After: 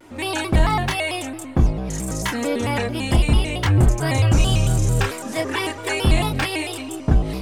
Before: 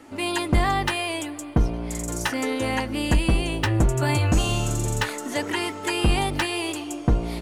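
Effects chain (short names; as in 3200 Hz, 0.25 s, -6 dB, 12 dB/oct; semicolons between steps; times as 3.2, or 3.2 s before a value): chorus voices 6, 0.73 Hz, delay 28 ms, depth 1.1 ms; shaped vibrato square 4.5 Hz, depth 160 cents; gain +4.5 dB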